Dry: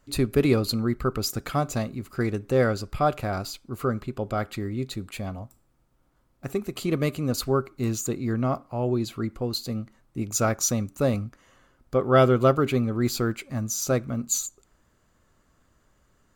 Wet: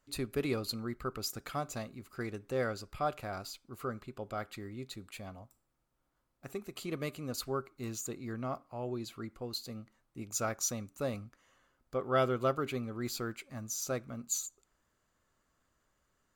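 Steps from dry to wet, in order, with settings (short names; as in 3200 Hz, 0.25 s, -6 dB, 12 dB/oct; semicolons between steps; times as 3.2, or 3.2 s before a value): low shelf 420 Hz -7 dB; gain -8.5 dB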